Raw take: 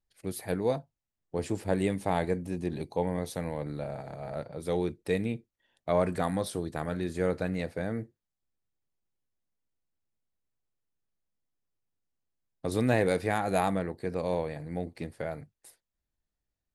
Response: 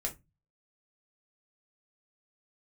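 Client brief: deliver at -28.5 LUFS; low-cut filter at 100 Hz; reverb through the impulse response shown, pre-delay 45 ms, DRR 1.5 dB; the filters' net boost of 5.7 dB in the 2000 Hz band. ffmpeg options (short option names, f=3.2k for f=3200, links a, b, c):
-filter_complex "[0:a]highpass=100,equalizer=f=2k:t=o:g=7,asplit=2[a][b];[1:a]atrim=start_sample=2205,adelay=45[c];[b][c]afir=irnorm=-1:irlink=0,volume=-3dB[d];[a][d]amix=inputs=2:normalize=0"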